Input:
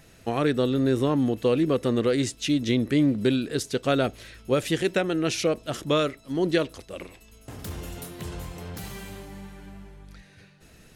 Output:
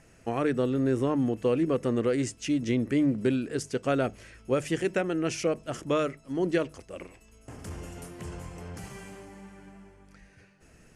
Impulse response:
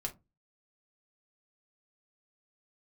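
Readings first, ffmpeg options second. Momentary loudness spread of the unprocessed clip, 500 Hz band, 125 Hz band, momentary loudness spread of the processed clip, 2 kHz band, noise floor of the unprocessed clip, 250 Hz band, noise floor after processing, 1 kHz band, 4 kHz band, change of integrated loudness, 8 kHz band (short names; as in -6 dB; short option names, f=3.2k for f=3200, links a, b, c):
17 LU, -3.0 dB, -4.0 dB, 17 LU, -4.0 dB, -54 dBFS, -3.0 dB, -58 dBFS, -3.0 dB, -10.0 dB, -3.5 dB, -4.5 dB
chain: -af "lowpass=f=10k:w=0.5412,lowpass=f=10k:w=1.3066,equalizer=f=3.8k:w=3.2:g=-13.5,bandreject=f=50:t=h:w=6,bandreject=f=100:t=h:w=6,bandreject=f=150:t=h:w=6,bandreject=f=200:t=h:w=6,volume=-3dB"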